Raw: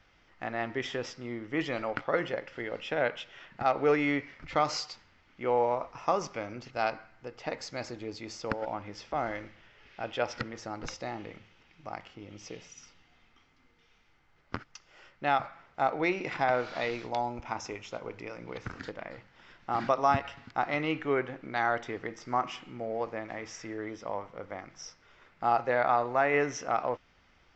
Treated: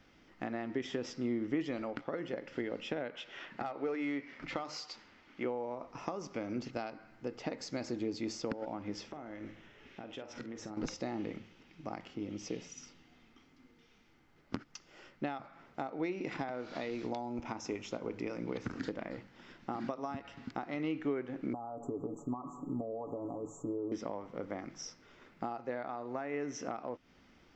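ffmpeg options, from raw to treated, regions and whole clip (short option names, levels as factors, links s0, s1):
-filter_complex "[0:a]asettb=1/sr,asplit=3[s0][s1][s2];[s0]atrim=end=3.144[s3];[s1]atrim=start=3.14:end=5.45,asetpts=PTS-STARTPTS,afade=t=in:d=0.004:c=qsin,afade=t=out:st=2.306:d=0.004:c=qsin,bandreject=f=50:t=h:w=6,bandreject=f=100:t=h:w=6,bandreject=f=150:t=h:w=6,bandreject=f=200:t=h:w=6,bandreject=f=250:t=h:w=6,asplit=2[s4][s5];[s5]highpass=f=720:p=1,volume=3.16,asoftclip=type=tanh:threshold=0.237[s6];[s4][s6]amix=inputs=2:normalize=0,lowpass=f=3700:p=1,volume=0.501[s7];[s2]atrim=start=5.446[s8];[s3][s7]acrossfade=d=0.004:c1=hsin:c2=qsin[s9];[s9][s8]acrossfade=d=0.004:c1=qsin:c2=hsin,asettb=1/sr,asplit=3[s10][s11][s12];[s10]atrim=end=9.084[s13];[s11]atrim=start=9.08:end=10.77,asetpts=PTS-STARTPTS,afade=t=in:d=0.004:c=qsin,afade=t=out:st=1.686:d=0.004:c=qsin,equalizer=f=4700:w=5:g=-8,acompressor=threshold=0.00631:ratio=8:attack=3.2:release=140:knee=1:detection=peak,asplit=2[s14][s15];[s15]adelay=47,volume=0.282[s16];[s14][s16]amix=inputs=2:normalize=0,atrim=end_sample=74529[s17];[s12]atrim=start=10.766[s18];[s13][s17]acrossfade=d=0.004:c1=hsin:c2=qsin[s19];[s19][s18]acrossfade=d=0.004:c1=qsin:c2=hsin,asettb=1/sr,asplit=3[s20][s21][s22];[s20]atrim=end=21.534[s23];[s21]atrim=start=21.53:end=23.92,asetpts=PTS-STARTPTS,afade=t=in:d=0.004:c=qsin,afade=t=out:st=2.386:d=0.004:c=qsin,aecho=1:1:7.1:0.77,atrim=end_sample=105399,acompressor=threshold=0.0141:ratio=8:attack=3.2:release=140:knee=1:detection=peak,asuperstop=centerf=3000:order=20:qfactor=0.52[s24];[s22]atrim=start=23.916[s25];[s23][s24]acrossfade=d=0.004:c1=hsin:c2=qsin[s26];[s26][s25]acrossfade=d=0.004:c1=qsin:c2=hsin,highshelf=f=4200:g=6.5,acompressor=threshold=0.0158:ratio=12,equalizer=f=260:t=o:w=1.7:g=13,volume=0.668"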